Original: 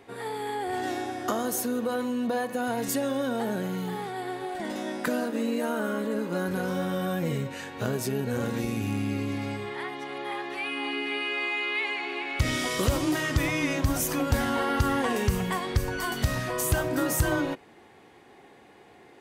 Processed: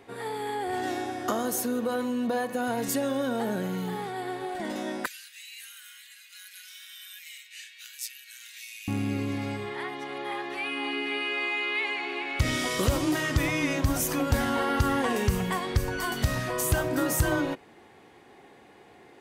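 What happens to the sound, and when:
5.06–8.88 s: steep high-pass 2.1 kHz

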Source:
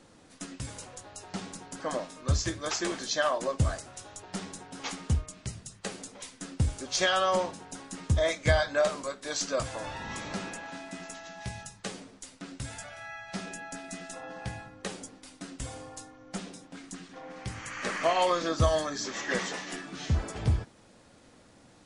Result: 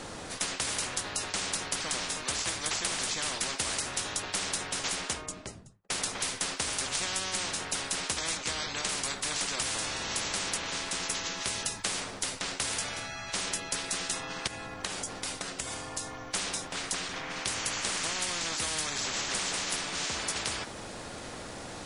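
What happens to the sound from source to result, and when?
4.73–5.90 s: studio fade out
8.37–8.89 s: distance through air 69 m
14.47–16.21 s: compression, threshold -46 dBFS
whole clip: spectrum-flattening compressor 10:1

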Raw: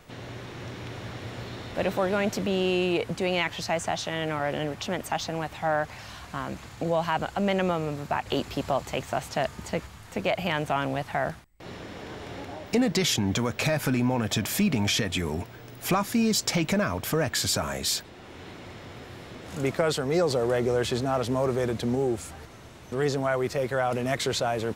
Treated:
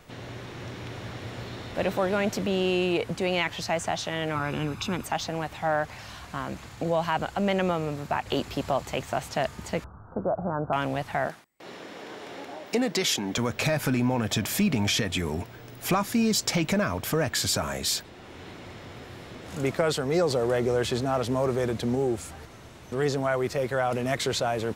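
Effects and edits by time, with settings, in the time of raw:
4.35–5.04 s: comb 0.8 ms, depth 69%
9.84–10.73 s: steep low-pass 1.5 kHz 96 dB/octave
11.27–13.38 s: high-pass 260 Hz

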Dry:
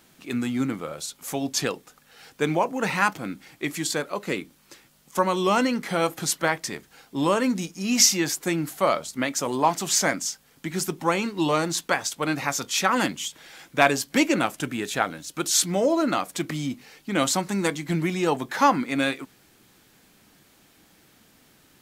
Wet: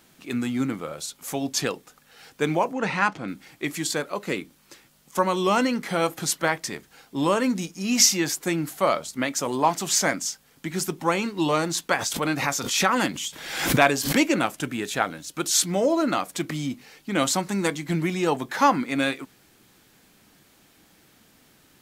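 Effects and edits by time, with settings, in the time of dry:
2.73–3.28 s: distance through air 79 m
11.90–14.18 s: swell ahead of each attack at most 60 dB/s

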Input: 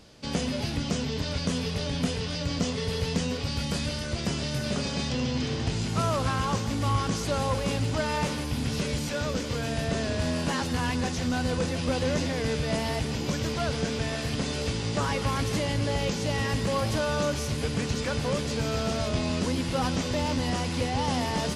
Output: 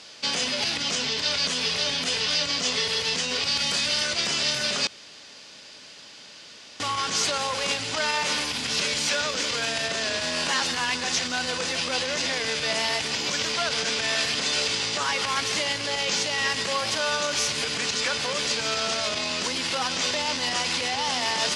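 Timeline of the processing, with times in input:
4.87–6.80 s: room tone
whole clip: treble shelf 4.9 kHz -11.5 dB; peak limiter -24 dBFS; frequency weighting ITU-R 468; trim +7.5 dB

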